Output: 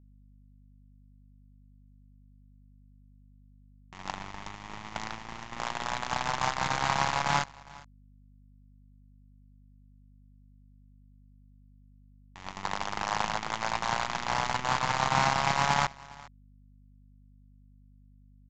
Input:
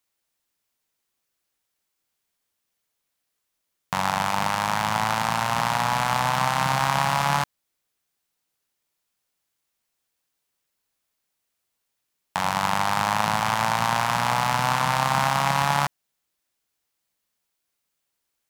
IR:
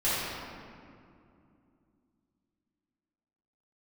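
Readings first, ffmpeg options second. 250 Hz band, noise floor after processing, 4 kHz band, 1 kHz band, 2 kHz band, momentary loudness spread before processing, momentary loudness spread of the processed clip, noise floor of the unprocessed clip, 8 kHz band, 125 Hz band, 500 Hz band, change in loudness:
−8.0 dB, −57 dBFS, −6.0 dB, −8.0 dB, −6.5 dB, 4 LU, 17 LU, −79 dBFS, −7.5 dB, −9.0 dB, −6.5 dB, −7.5 dB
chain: -filter_complex "[0:a]agate=range=-23dB:threshold=-20dB:ratio=16:detection=peak,equalizer=frequency=2100:width=4.2:gain=4,asplit=2[link_01][link_02];[link_02]asoftclip=type=tanh:threshold=-35.5dB,volume=-4dB[link_03];[link_01][link_03]amix=inputs=2:normalize=0,acrusher=bits=5:dc=4:mix=0:aa=0.000001,aeval=exprs='val(0)+0.002*(sin(2*PI*50*n/s)+sin(2*PI*2*50*n/s)/2+sin(2*PI*3*50*n/s)/3+sin(2*PI*4*50*n/s)/4+sin(2*PI*5*50*n/s)/5)':channel_layout=same,aecho=1:1:408:0.0794,aresample=16000,aresample=44100,volume=-1.5dB"

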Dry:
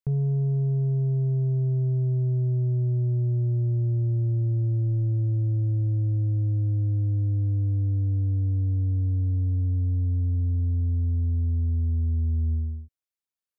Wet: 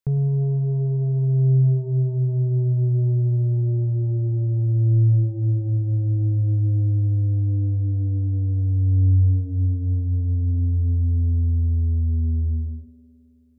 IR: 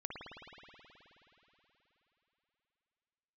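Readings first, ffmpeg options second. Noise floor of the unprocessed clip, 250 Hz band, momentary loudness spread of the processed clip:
below −85 dBFS, +4.0 dB, 5 LU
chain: -filter_complex "[0:a]asplit=2[link_01][link_02];[1:a]atrim=start_sample=2205,adelay=106[link_03];[link_02][link_03]afir=irnorm=-1:irlink=0,volume=-9dB[link_04];[link_01][link_04]amix=inputs=2:normalize=0,volume=3.5dB"

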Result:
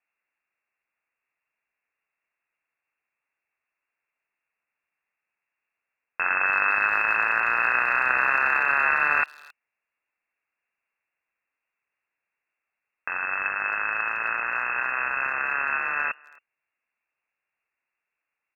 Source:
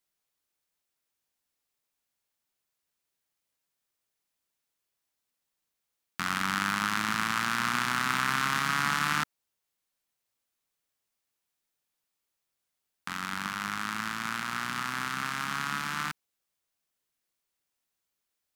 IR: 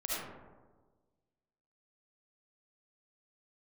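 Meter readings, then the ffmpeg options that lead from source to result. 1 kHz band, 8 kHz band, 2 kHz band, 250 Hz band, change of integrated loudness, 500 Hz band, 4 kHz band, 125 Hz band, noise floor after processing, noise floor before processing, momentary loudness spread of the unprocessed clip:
+4.5 dB, below −20 dB, +9.0 dB, −11.0 dB, +7.0 dB, +10.0 dB, below −20 dB, below −10 dB, below −85 dBFS, −84 dBFS, 9 LU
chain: -filter_complex "[0:a]lowpass=frequency=2400:width_type=q:width=0.5098,lowpass=frequency=2400:width_type=q:width=0.6013,lowpass=frequency=2400:width_type=q:width=0.9,lowpass=frequency=2400:width_type=q:width=2.563,afreqshift=-2800,asplit=2[link_01][link_02];[link_02]adelay=270,highpass=300,lowpass=3400,asoftclip=type=hard:threshold=-21.5dB,volume=-25dB[link_03];[link_01][link_03]amix=inputs=2:normalize=0,crystalizer=i=8.5:c=0"

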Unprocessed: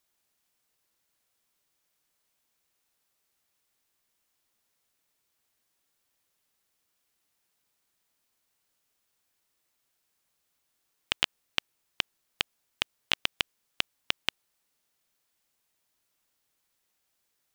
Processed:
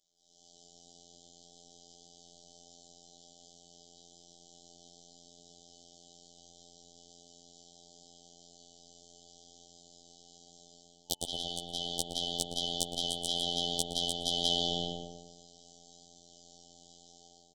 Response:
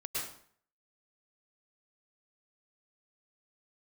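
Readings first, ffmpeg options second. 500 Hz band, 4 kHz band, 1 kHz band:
+8.5 dB, +1.5 dB, +2.5 dB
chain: -filter_complex "[0:a]aresample=16000,aresample=44100,aecho=1:1:6.7:0.77[link_01];[1:a]atrim=start_sample=2205,asetrate=26901,aresample=44100[link_02];[link_01][link_02]afir=irnorm=-1:irlink=0,acompressor=threshold=-36dB:ratio=12,aeval=exprs='0.299*(cos(1*acos(clip(val(0)/0.299,-1,1)))-cos(1*PI/2))+0.119*(cos(2*acos(clip(val(0)/0.299,-1,1)))-cos(2*PI/2))+0.00944*(cos(3*acos(clip(val(0)/0.299,-1,1)))-cos(3*PI/2))+0.0944*(cos(7*acos(clip(val(0)/0.299,-1,1)))-cos(7*PI/2))':channel_layout=same,afftfilt=real='re*(1-between(b*sr/4096,840,3000))':imag='im*(1-between(b*sr/4096,840,3000))':win_size=4096:overlap=0.75,highshelf=frequency=5500:gain=7,dynaudnorm=framelen=310:gausssize=3:maxgain=15dB,afftfilt=real='hypot(re,im)*cos(PI*b)':imag='0':win_size=2048:overlap=0.75,adynamicequalizer=threshold=0.00158:dfrequency=1400:dqfactor=2.6:tfrequency=1400:tqfactor=2.6:attack=5:release=100:ratio=0.375:range=2:mode=boostabove:tftype=bell,asplit=2[link_03][link_04];[link_04]adelay=116,lowpass=frequency=1500:poles=1,volume=-3dB,asplit=2[link_05][link_06];[link_06]adelay=116,lowpass=frequency=1500:poles=1,volume=0.43,asplit=2[link_07][link_08];[link_08]adelay=116,lowpass=frequency=1500:poles=1,volume=0.43,asplit=2[link_09][link_10];[link_10]adelay=116,lowpass=frequency=1500:poles=1,volume=0.43,asplit=2[link_11][link_12];[link_12]adelay=116,lowpass=frequency=1500:poles=1,volume=0.43,asplit=2[link_13][link_14];[link_14]adelay=116,lowpass=frequency=1500:poles=1,volume=0.43[link_15];[link_03][link_05][link_07][link_09][link_11][link_13][link_15]amix=inputs=7:normalize=0"

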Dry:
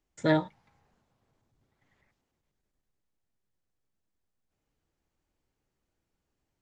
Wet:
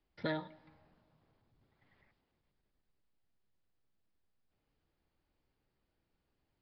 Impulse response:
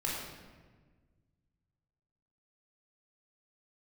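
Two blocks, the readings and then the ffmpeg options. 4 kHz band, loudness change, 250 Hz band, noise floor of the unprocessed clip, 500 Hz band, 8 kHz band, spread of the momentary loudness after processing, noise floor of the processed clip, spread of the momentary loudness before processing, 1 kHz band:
−7.5 dB, −12.0 dB, −13.0 dB, −83 dBFS, −12.0 dB, can't be measured, 11 LU, −83 dBFS, 12 LU, −11.0 dB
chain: -filter_complex "[0:a]acrossover=split=710|1500[link_01][link_02][link_03];[link_01]acompressor=threshold=-39dB:ratio=4[link_04];[link_02]acompressor=threshold=-45dB:ratio=4[link_05];[link_03]acompressor=threshold=-44dB:ratio=4[link_06];[link_04][link_05][link_06]amix=inputs=3:normalize=0,asplit=2[link_07][link_08];[1:a]atrim=start_sample=2205,adelay=66[link_09];[link_08][link_09]afir=irnorm=-1:irlink=0,volume=-27dB[link_10];[link_07][link_10]amix=inputs=2:normalize=0,aresample=11025,aresample=44100"

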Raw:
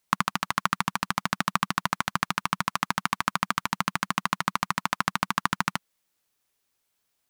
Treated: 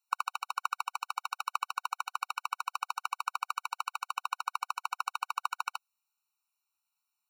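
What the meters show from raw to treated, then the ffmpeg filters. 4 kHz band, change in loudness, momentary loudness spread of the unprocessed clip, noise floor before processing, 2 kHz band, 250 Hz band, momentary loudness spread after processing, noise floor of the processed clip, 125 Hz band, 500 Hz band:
−10.0 dB, −8.0 dB, 2 LU, −77 dBFS, −12.0 dB, below −40 dB, 2 LU, below −85 dBFS, below −40 dB, below −30 dB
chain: -af "afftfilt=real='re*eq(mod(floor(b*sr/1024/750),2),1)':imag='im*eq(mod(floor(b*sr/1024/750),2),1)':win_size=1024:overlap=0.75,volume=-6dB"

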